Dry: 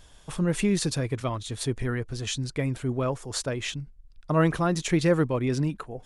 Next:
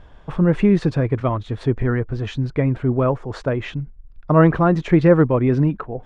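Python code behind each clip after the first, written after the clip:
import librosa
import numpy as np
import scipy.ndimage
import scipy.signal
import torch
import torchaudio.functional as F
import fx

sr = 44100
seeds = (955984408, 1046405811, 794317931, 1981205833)

y = scipy.signal.sosfilt(scipy.signal.butter(2, 1600.0, 'lowpass', fs=sr, output='sos'), x)
y = F.gain(torch.from_numpy(y), 9.0).numpy()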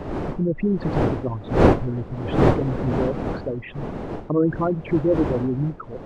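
y = fx.envelope_sharpen(x, sr, power=3.0)
y = fx.dmg_wind(y, sr, seeds[0], corner_hz=450.0, level_db=-18.0)
y = F.gain(torch.from_numpy(y), -6.5).numpy()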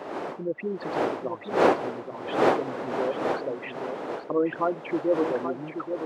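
y = scipy.signal.sosfilt(scipy.signal.butter(2, 470.0, 'highpass', fs=sr, output='sos'), x)
y = fx.echo_feedback(y, sr, ms=829, feedback_pct=26, wet_db=-7.5)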